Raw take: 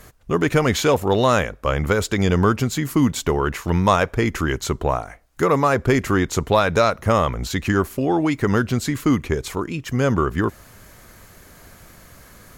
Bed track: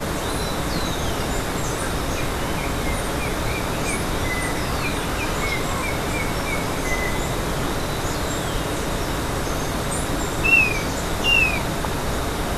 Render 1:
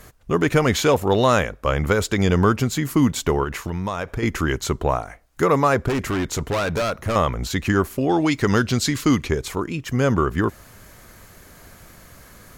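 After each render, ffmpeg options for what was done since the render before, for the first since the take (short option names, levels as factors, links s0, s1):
-filter_complex "[0:a]asettb=1/sr,asplit=3[s0][s1][s2];[s0]atrim=end=3.434[s3];[s1]atrim=start=3.43:end=4.23,asetpts=PTS-STARTPTS,afade=t=in:d=0.004:c=qsin,afade=t=out:st=0.796:d=0.004:c=qsin,acompressor=threshold=0.0891:ratio=8:attack=3.2:release=140:knee=1:detection=peak[s4];[s2]atrim=start=4.226[s5];[s3][s4]acrossfade=d=0.004:c1=hsin:c2=qsin[s6];[s6][s5]acrossfade=d=0.004:c1=qsin:c2=hsin,asettb=1/sr,asplit=3[s7][s8][s9];[s7]atrim=end=5.884[s10];[s8]atrim=start=5.88:end=7.16,asetpts=PTS-STARTPTS,afade=t=in:d=0.004:c=qsin,afade=t=out:st=1.276:d=0.004:c=qsin,volume=9.44,asoftclip=hard,volume=0.106[s11];[s9]atrim=start=7.156[s12];[s10][s11]acrossfade=d=0.004:c1=hsin:c2=qsin[s13];[s13][s12]acrossfade=d=0.004:c1=qsin:c2=hsin,asettb=1/sr,asplit=3[s14][s15][s16];[s14]atrim=end=8.094[s17];[s15]atrim=start=8.09:end=9.31,asetpts=PTS-STARTPTS,afade=t=in:d=0.004:c=qsin,afade=t=out:st=1.216:d=0.004:c=qsin,equalizer=f=4700:t=o:w=1.6:g=8.5[s18];[s16]atrim=start=9.306[s19];[s17][s18]acrossfade=d=0.004:c1=hsin:c2=qsin[s20];[s20][s19]acrossfade=d=0.004:c1=qsin:c2=hsin"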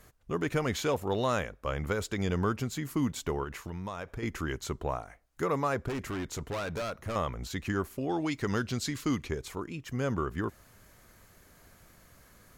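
-af "volume=0.251"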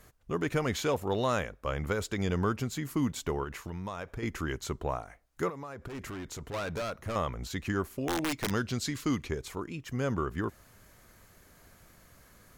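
-filter_complex "[0:a]asettb=1/sr,asplit=3[s0][s1][s2];[s0]atrim=end=5.494[s3];[s1]atrim=start=5.49:end=6.54,asetpts=PTS-STARTPTS,afade=t=in:d=0.004:c=qsin,afade=t=out:st=1.046:d=0.004:c=qsin,acompressor=threshold=0.0141:ratio=16:attack=3.2:release=140:knee=1:detection=peak[s4];[s2]atrim=start=6.536[s5];[s3][s4]acrossfade=d=0.004:c1=hsin:c2=qsin[s6];[s6][s5]acrossfade=d=0.004:c1=qsin:c2=hsin,asplit=3[s7][s8][s9];[s7]afade=t=out:st=7.99:d=0.02[s10];[s8]aeval=exprs='(mod(15*val(0)+1,2)-1)/15':c=same,afade=t=in:st=7.99:d=0.02,afade=t=out:st=8.49:d=0.02[s11];[s9]afade=t=in:st=8.49:d=0.02[s12];[s10][s11][s12]amix=inputs=3:normalize=0"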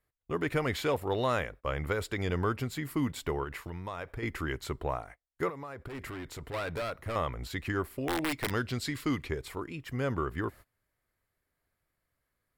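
-af "agate=range=0.0631:threshold=0.00447:ratio=16:detection=peak,equalizer=f=200:t=o:w=0.33:g=-8,equalizer=f=2000:t=o:w=0.33:g=4,equalizer=f=6300:t=o:w=0.33:g=-11"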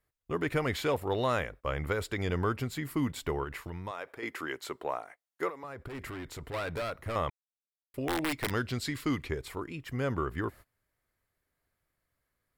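-filter_complex "[0:a]asettb=1/sr,asplit=3[s0][s1][s2];[s0]atrim=end=3.914[s3];[s1]atrim=start=3.91:end=5.64,asetpts=PTS-STARTPTS,afade=t=in:d=0.004:c=qsin,afade=t=out:st=1.726:d=0.004:c=qsin,highpass=320[s4];[s2]atrim=start=5.636[s5];[s3][s4]acrossfade=d=0.004:c1=hsin:c2=qsin[s6];[s6][s5]acrossfade=d=0.004:c1=qsin:c2=hsin,asplit=3[s7][s8][s9];[s7]atrim=end=7.3,asetpts=PTS-STARTPTS,afade=t=out:st=7.296:d=0.004:c=hsin[s10];[s8]atrim=start=7.3:end=7.94,asetpts=PTS-STARTPTS,volume=0[s11];[s9]atrim=start=7.94,asetpts=PTS-STARTPTS,afade=t=in:d=0.004:c=hsin[s12];[s10][s11][s12]concat=n=3:v=0:a=1"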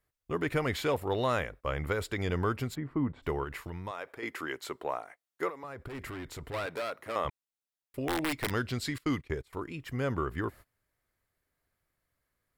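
-filter_complex "[0:a]asplit=3[s0][s1][s2];[s0]afade=t=out:st=2.74:d=0.02[s3];[s1]lowpass=1200,afade=t=in:st=2.74:d=0.02,afade=t=out:st=3.22:d=0.02[s4];[s2]afade=t=in:st=3.22:d=0.02[s5];[s3][s4][s5]amix=inputs=3:normalize=0,asettb=1/sr,asplit=3[s6][s7][s8];[s6]atrim=end=6.664[s9];[s7]atrim=start=6.66:end=7.25,asetpts=PTS-STARTPTS,afade=t=in:d=0.004:c=qsin,afade=t=out:st=0.586:d=0.004:c=qsin,highpass=270[s10];[s8]atrim=start=7.246[s11];[s9][s10]acrossfade=d=0.004:c1=hsin:c2=qsin[s12];[s12][s11]acrossfade=d=0.004:c1=qsin:c2=hsin,asettb=1/sr,asplit=3[s13][s14][s15];[s13]atrim=end=8.984[s16];[s14]atrim=start=8.98:end=9.53,asetpts=PTS-STARTPTS,afade=t=in:d=0.004:c=qsin,afade=t=out:st=0.546:d=0.004:c=qsin,agate=range=0.0891:threshold=0.00891:ratio=16:release=100:detection=peak[s17];[s15]atrim=start=9.526[s18];[s16][s17]acrossfade=d=0.004:c1=hsin:c2=qsin[s19];[s19][s18]acrossfade=d=0.004:c1=qsin:c2=hsin"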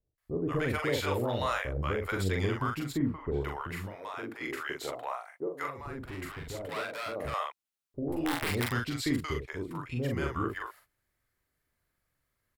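-filter_complex "[0:a]asplit=2[s0][s1];[s1]adelay=42,volume=0.668[s2];[s0][s2]amix=inputs=2:normalize=0,acrossover=split=630[s3][s4];[s4]adelay=180[s5];[s3][s5]amix=inputs=2:normalize=0"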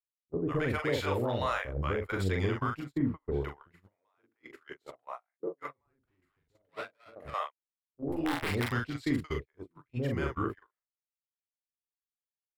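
-af "agate=range=0.0158:threshold=0.0224:ratio=16:detection=peak,highshelf=f=5600:g=-8.5"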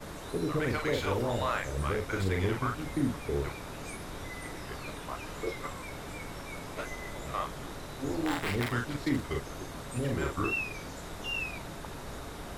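-filter_complex "[1:a]volume=0.133[s0];[0:a][s0]amix=inputs=2:normalize=0"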